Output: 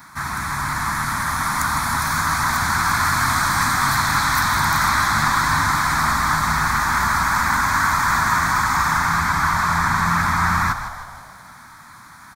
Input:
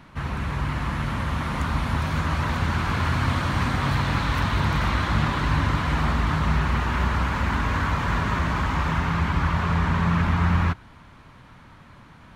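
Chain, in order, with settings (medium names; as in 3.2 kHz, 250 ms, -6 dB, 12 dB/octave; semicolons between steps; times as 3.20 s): tilt EQ +4 dB/octave; static phaser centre 1.2 kHz, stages 4; frequency-shifting echo 157 ms, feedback 54%, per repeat -54 Hz, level -10 dB; trim +9 dB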